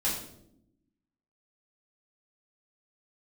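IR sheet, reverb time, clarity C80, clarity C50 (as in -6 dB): 0.75 s, 7.5 dB, 4.5 dB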